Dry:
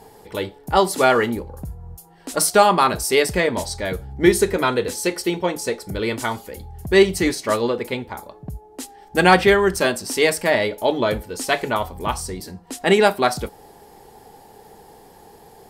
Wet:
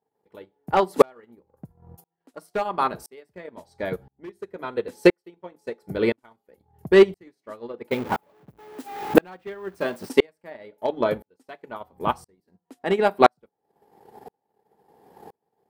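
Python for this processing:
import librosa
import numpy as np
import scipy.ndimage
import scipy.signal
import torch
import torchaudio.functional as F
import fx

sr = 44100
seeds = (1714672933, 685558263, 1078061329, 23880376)

y = fx.zero_step(x, sr, step_db=-23.0, at=(7.91, 10.09))
y = scipy.signal.sosfilt(scipy.signal.butter(2, 140.0, 'highpass', fs=sr, output='sos'), y)
y = fx.peak_eq(y, sr, hz=7500.0, db=-13.0, octaves=2.6)
y = fx.transient(y, sr, attack_db=7, sustain_db=-10)
y = np.clip(y, -10.0 ** (-4.5 / 20.0), 10.0 ** (-4.5 / 20.0))
y = fx.tremolo_decay(y, sr, direction='swelling', hz=0.98, depth_db=39)
y = y * librosa.db_to_amplitude(3.5)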